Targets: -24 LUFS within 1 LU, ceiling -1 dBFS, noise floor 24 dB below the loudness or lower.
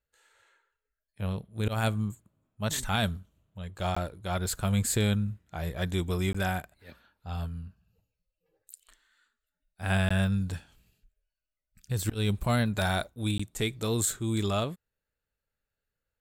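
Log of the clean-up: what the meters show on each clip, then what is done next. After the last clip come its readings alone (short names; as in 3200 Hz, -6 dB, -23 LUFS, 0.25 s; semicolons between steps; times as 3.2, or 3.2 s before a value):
dropouts 4; longest dropout 15 ms; loudness -30.5 LUFS; peak -15.0 dBFS; loudness target -24.0 LUFS
-> interpolate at 3.95/6.33/10.09/13.38, 15 ms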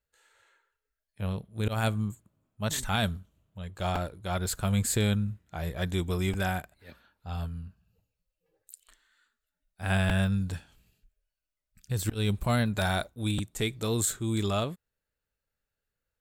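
dropouts 0; loudness -30.5 LUFS; peak -15.0 dBFS; loudness target -24.0 LUFS
-> gain +6.5 dB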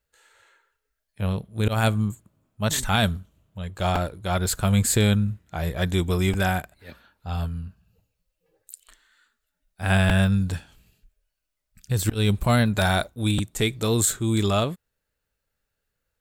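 loudness -24.0 LUFS; peak -8.5 dBFS; noise floor -81 dBFS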